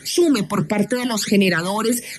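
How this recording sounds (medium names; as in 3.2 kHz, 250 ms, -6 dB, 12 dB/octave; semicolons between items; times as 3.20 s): phasing stages 12, 1.6 Hz, lowest notch 430–1400 Hz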